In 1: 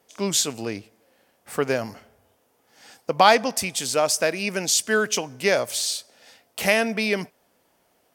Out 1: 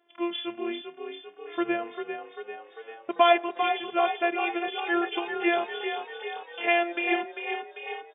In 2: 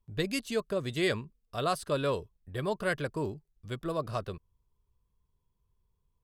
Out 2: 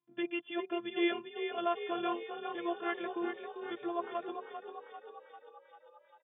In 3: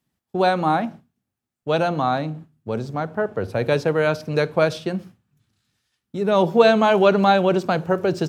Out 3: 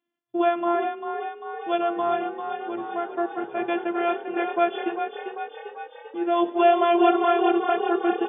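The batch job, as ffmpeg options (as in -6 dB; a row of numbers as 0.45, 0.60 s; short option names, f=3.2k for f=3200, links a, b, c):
-filter_complex "[0:a]afftfilt=real='hypot(re,im)*cos(PI*b)':imag='0':win_size=512:overlap=0.75,afftfilt=real='re*between(b*sr/4096,120,3500)':imag='im*between(b*sr/4096,120,3500)':win_size=4096:overlap=0.75,asplit=9[a][b][c][d][e][f][g][h][i];[b]adelay=395,afreqshift=34,volume=-7.5dB[j];[c]adelay=790,afreqshift=68,volume=-11.8dB[k];[d]adelay=1185,afreqshift=102,volume=-16.1dB[l];[e]adelay=1580,afreqshift=136,volume=-20.4dB[m];[f]adelay=1975,afreqshift=170,volume=-24.7dB[n];[g]adelay=2370,afreqshift=204,volume=-29dB[o];[h]adelay=2765,afreqshift=238,volume=-33.3dB[p];[i]adelay=3160,afreqshift=272,volume=-37.6dB[q];[a][j][k][l][m][n][o][p][q]amix=inputs=9:normalize=0"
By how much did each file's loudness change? -5.5, -4.0, -4.0 LU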